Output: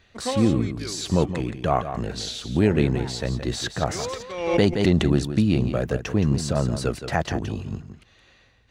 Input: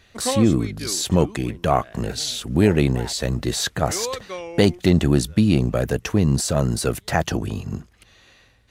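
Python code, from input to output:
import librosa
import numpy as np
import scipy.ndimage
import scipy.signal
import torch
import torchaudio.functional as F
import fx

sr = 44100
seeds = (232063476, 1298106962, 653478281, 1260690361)

y = fx.peak_eq(x, sr, hz=13000.0, db=-15.0, octaves=0.97)
y = y + 10.0 ** (-10.0 / 20.0) * np.pad(y, (int(171 * sr / 1000.0), 0))[:len(y)]
y = fx.pre_swell(y, sr, db_per_s=66.0, at=(4.3, 5.01), fade=0.02)
y = y * 10.0 ** (-3.0 / 20.0)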